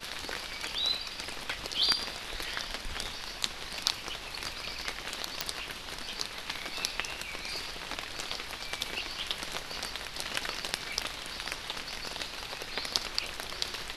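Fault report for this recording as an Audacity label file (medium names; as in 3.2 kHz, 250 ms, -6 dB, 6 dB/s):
5.410000	5.410000	pop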